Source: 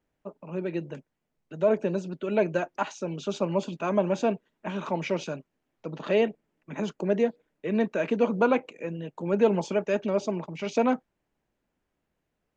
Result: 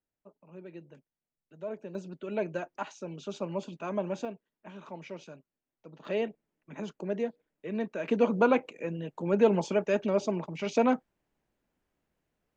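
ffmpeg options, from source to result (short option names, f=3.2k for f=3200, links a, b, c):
-af "asetnsamples=n=441:p=0,asendcmd='1.95 volume volume -7.5dB;4.25 volume volume -14dB;6.05 volume volume -7.5dB;8.08 volume volume -1dB',volume=-15dB"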